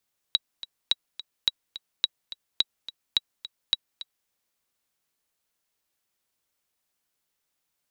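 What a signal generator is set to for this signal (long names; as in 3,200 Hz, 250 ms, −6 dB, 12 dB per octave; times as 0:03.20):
click track 213 BPM, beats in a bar 2, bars 7, 3,870 Hz, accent 15.5 dB −7.5 dBFS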